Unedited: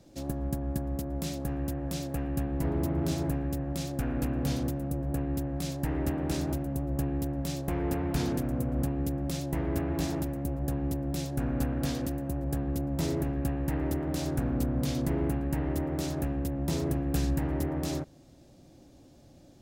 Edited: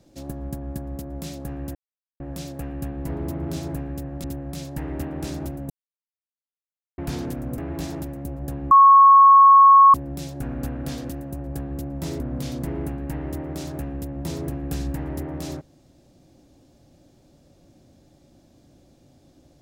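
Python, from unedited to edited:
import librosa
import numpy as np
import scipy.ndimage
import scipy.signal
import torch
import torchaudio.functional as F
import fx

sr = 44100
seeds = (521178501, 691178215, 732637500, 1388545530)

y = fx.edit(x, sr, fx.insert_silence(at_s=1.75, length_s=0.45),
    fx.cut(start_s=3.79, length_s=1.52),
    fx.silence(start_s=6.77, length_s=1.28),
    fx.cut(start_s=8.65, length_s=1.13),
    fx.insert_tone(at_s=10.91, length_s=1.23, hz=1100.0, db=-7.5),
    fx.cut(start_s=13.17, length_s=1.46), tone=tone)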